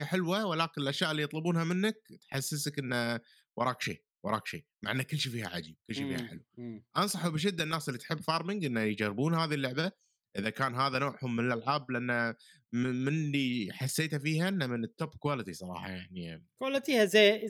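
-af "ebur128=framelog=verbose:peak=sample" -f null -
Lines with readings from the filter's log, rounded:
Integrated loudness:
  I:         -32.5 LUFS
  Threshold: -42.8 LUFS
Loudness range:
  LRA:         3.4 LU
  Threshold: -53.4 LUFS
  LRA low:   -35.5 LUFS
  LRA high:  -32.2 LUFS
Sample peak:
  Peak:      -11.6 dBFS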